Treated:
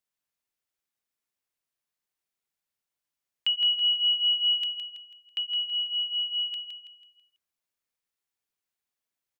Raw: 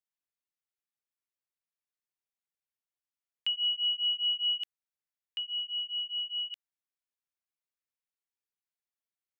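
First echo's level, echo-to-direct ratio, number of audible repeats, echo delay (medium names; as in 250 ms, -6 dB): -7.0 dB, -6.0 dB, 4, 164 ms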